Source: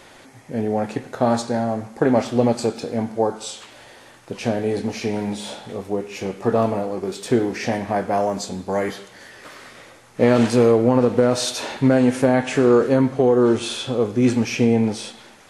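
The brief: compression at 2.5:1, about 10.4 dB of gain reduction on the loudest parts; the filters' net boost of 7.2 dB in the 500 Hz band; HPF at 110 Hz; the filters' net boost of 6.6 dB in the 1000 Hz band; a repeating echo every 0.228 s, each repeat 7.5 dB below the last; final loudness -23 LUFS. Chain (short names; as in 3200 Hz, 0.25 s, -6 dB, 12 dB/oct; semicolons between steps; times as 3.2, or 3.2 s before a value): HPF 110 Hz; bell 500 Hz +7 dB; bell 1000 Hz +6 dB; compressor 2.5:1, threshold -21 dBFS; feedback echo 0.228 s, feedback 42%, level -7.5 dB; gain -0.5 dB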